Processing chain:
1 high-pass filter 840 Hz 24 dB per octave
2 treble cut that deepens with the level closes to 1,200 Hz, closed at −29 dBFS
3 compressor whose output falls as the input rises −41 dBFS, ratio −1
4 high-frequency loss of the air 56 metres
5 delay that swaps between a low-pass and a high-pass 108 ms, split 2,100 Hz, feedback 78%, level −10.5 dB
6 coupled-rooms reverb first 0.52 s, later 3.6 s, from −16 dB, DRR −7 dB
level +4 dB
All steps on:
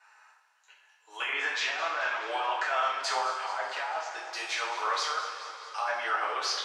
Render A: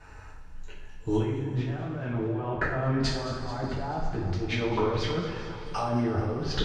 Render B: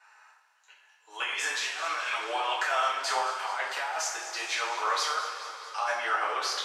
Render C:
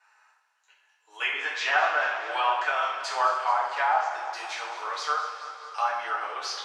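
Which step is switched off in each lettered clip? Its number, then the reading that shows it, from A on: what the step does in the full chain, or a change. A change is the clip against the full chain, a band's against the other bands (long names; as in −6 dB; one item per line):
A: 1, 250 Hz band +30.5 dB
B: 2, 8 kHz band +4.5 dB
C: 3, change in crest factor +2.0 dB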